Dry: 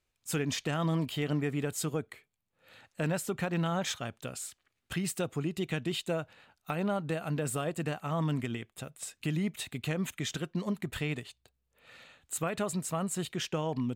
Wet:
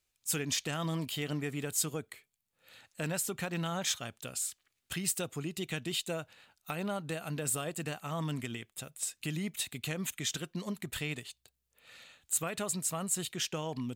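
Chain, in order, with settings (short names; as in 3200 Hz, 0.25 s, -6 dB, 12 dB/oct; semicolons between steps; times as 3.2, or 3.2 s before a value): high shelf 3000 Hz +12 dB; gain -5 dB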